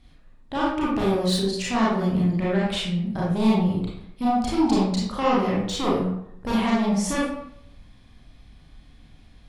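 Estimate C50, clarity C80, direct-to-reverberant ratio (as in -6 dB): -0.5 dB, 4.0 dB, -6.5 dB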